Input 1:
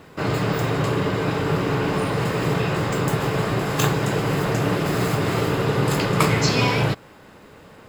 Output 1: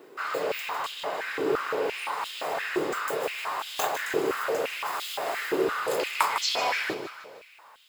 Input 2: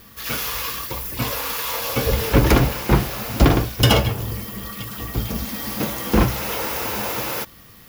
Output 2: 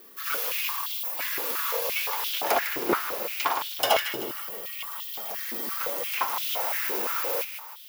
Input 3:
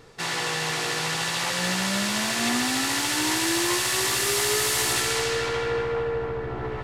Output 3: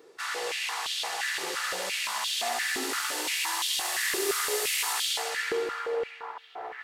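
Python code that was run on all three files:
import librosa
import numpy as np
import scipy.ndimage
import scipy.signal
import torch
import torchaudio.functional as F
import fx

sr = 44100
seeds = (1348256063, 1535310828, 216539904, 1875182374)

p1 = fx.high_shelf(x, sr, hz=12000.0, db=10.0)
p2 = p1 + fx.echo_feedback(p1, sr, ms=154, feedback_pct=51, wet_db=-9.5, dry=0)
p3 = fx.filter_held_highpass(p2, sr, hz=5.8, low_hz=370.0, high_hz=3300.0)
y = p3 * 10.0 ** (-9.0 / 20.0)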